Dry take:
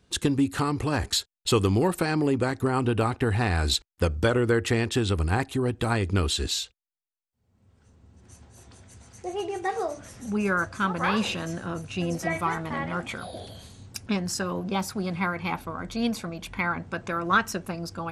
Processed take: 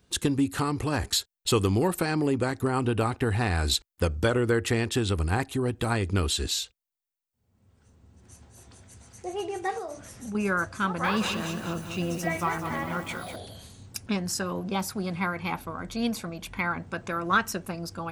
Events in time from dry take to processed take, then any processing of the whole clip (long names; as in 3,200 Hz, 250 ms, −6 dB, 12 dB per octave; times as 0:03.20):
0:09.78–0:10.35: downward compressor 4 to 1, threshold −31 dBFS
0:10.85–0:13.36: feedback echo at a low word length 198 ms, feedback 55%, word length 8 bits, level −8.5 dB
whole clip: high-shelf EQ 12,000 Hz +10.5 dB; level −1.5 dB